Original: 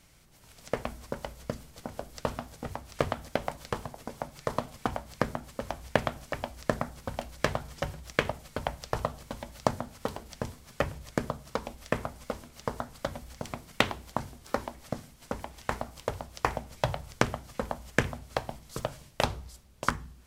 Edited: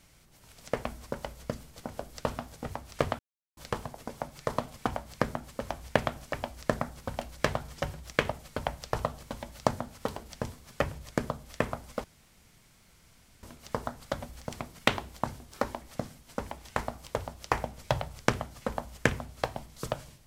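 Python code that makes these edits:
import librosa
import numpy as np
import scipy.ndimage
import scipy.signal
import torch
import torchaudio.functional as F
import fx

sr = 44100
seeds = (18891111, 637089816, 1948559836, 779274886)

y = fx.edit(x, sr, fx.silence(start_s=3.19, length_s=0.38),
    fx.cut(start_s=11.43, length_s=0.32),
    fx.insert_room_tone(at_s=12.36, length_s=1.39), tone=tone)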